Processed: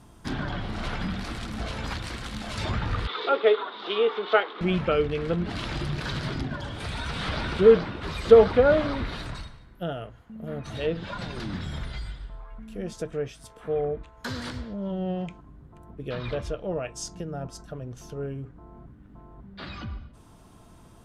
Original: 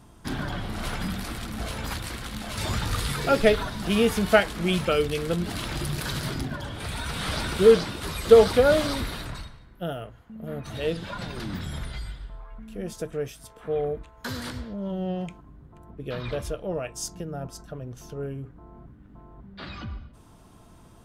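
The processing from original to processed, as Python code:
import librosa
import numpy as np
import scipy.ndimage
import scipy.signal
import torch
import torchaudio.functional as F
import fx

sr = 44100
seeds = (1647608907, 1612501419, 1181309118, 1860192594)

y = fx.cabinet(x, sr, low_hz=380.0, low_slope=24, high_hz=3900.0, hz=(410.0, 620.0, 1200.0, 1700.0, 2500.0, 3600.0), db=(5, -7, 5, -6, -4, 9), at=(3.07, 4.61))
y = fx.env_lowpass_down(y, sr, base_hz=2400.0, full_db=-23.0)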